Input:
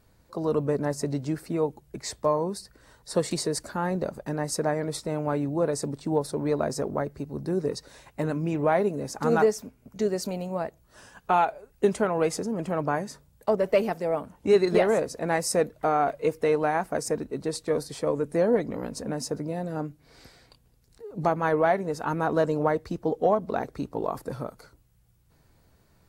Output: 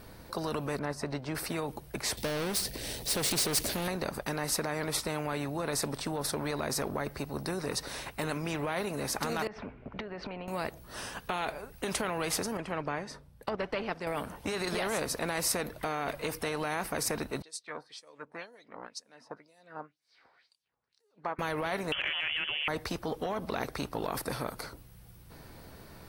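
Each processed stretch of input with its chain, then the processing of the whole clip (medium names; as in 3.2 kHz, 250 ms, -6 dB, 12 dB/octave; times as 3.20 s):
0.79–1.35 s: low-pass 1.7 kHz 6 dB/octave + upward expansion, over -36 dBFS
2.17–3.88 s: Butterworth band-stop 1.2 kHz, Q 0.62 + power-law waveshaper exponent 0.7
9.47–10.48 s: low-pass 2.7 kHz 24 dB/octave + compression 12:1, threshold -37 dBFS
12.57–14.07 s: low-pass that closes with the level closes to 3 kHz, closed at -18.5 dBFS + treble shelf 4.3 kHz -6.5 dB + upward expansion, over -36 dBFS
17.42–21.39 s: LFO band-pass sine 2 Hz 890–7700 Hz + treble shelf 9 kHz -5.5 dB + upward expansion, over -54 dBFS
21.92–22.68 s: frequency inversion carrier 3.2 kHz + three bands compressed up and down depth 100%
whole clip: peaking EQ 7.1 kHz -9.5 dB 0.3 oct; peak limiter -20 dBFS; spectrum-flattening compressor 2:1; trim +3 dB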